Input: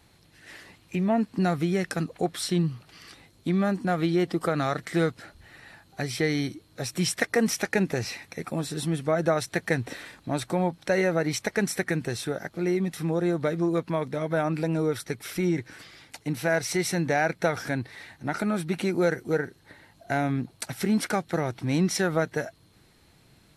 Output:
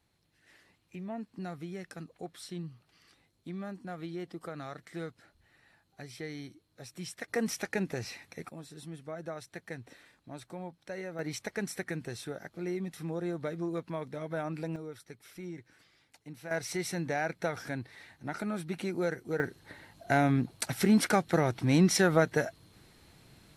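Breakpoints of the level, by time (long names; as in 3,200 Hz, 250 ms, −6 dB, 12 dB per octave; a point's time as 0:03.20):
−15.5 dB
from 0:07.28 −8 dB
from 0:08.49 −16.5 dB
from 0:11.19 −9.5 dB
from 0:14.76 −17 dB
from 0:16.51 −8 dB
from 0:19.40 +0.5 dB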